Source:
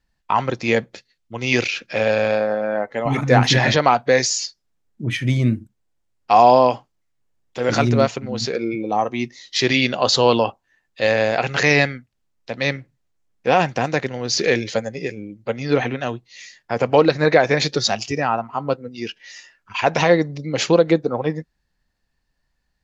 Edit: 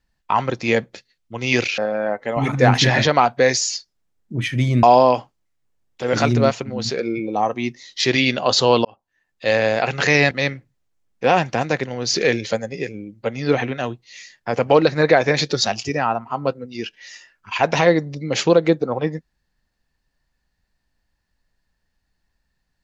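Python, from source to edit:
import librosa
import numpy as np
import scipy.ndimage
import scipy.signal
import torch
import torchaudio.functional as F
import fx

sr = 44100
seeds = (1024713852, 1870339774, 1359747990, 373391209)

y = fx.edit(x, sr, fx.cut(start_s=1.78, length_s=0.69),
    fx.cut(start_s=5.52, length_s=0.87),
    fx.fade_in_span(start_s=10.41, length_s=0.66),
    fx.cut(start_s=11.87, length_s=0.67), tone=tone)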